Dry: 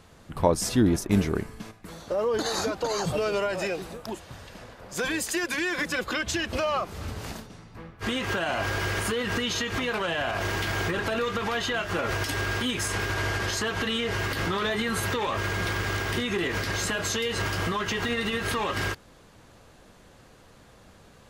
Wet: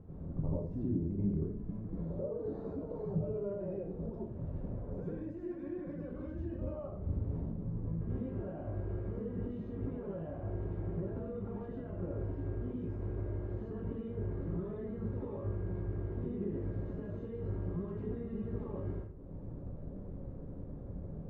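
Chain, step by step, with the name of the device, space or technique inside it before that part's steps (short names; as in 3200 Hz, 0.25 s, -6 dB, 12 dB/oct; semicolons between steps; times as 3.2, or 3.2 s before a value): television next door (compressor 4:1, threshold -45 dBFS, peak gain reduction 24 dB; LPF 330 Hz 12 dB/oct; reverb RT60 0.50 s, pre-delay 81 ms, DRR -6.5 dB); gain +3 dB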